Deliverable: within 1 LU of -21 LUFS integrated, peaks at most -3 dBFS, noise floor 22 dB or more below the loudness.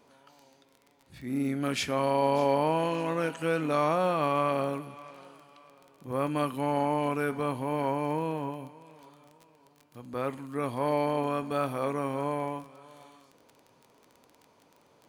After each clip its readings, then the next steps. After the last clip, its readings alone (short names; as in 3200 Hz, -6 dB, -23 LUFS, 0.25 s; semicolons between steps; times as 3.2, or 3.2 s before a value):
ticks 21/s; loudness -29.5 LUFS; peak -13.0 dBFS; loudness target -21.0 LUFS
-> de-click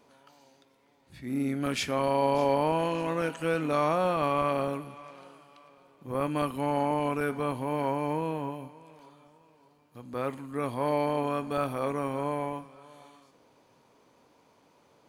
ticks 0.46/s; loudness -29.5 LUFS; peak -13.0 dBFS; loudness target -21.0 LUFS
-> gain +8.5 dB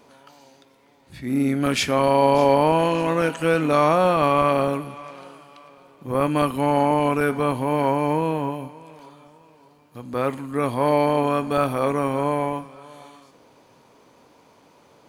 loudness -21.0 LUFS; peak -4.5 dBFS; noise floor -56 dBFS